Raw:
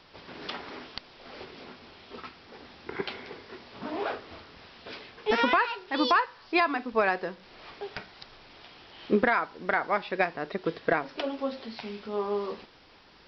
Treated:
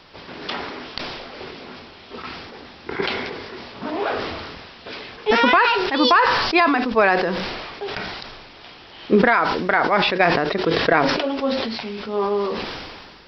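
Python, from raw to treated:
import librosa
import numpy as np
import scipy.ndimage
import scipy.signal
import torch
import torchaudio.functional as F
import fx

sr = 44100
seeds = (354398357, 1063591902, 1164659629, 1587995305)

y = fx.sustainer(x, sr, db_per_s=32.0)
y = y * librosa.db_to_amplitude(7.5)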